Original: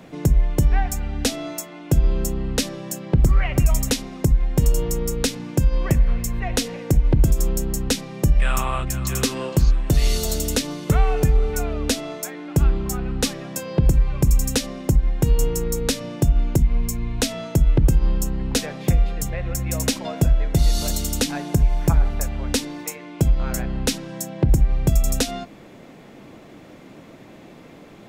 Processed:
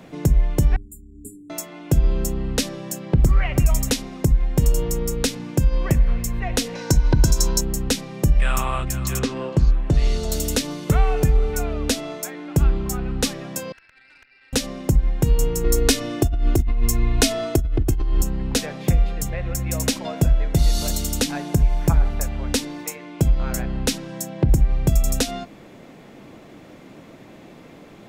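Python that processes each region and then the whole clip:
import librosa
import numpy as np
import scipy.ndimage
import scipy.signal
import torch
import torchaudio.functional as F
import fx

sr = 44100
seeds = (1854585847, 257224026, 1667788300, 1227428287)

y = fx.chain(x, sr, fx.brickwall_bandstop(low_hz=450.0, high_hz=7000.0),
    fx.peak_eq(hz=720.0, db=-5.0, octaves=1.3),
    fx.stiff_resonator(f0_hz=100.0, decay_s=0.35, stiffness=0.002), at=(0.76, 1.5))
y = fx.chain(y, sr, fx.peak_eq(hz=5600.0, db=14.5, octaves=0.91),
    fx.small_body(hz=(980.0, 1500.0, 4000.0), ring_ms=55, db=17), at=(6.75, 7.61))
y = fx.chain(y, sr, fx.lowpass(hz=6900.0, slope=12),
    fx.high_shelf(hz=2600.0, db=-9.0), at=(9.19, 10.32))
y = fx.chain(y, sr, fx.brickwall_bandpass(low_hz=1300.0, high_hz=2900.0),
    fx.tube_stage(drive_db=43.0, bias=0.8), at=(13.72, 14.53))
y = fx.chain(y, sr, fx.comb(ms=2.8, depth=0.74),
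    fx.over_compress(threshold_db=-17.0, ratio=-1.0), at=(15.64, 18.22))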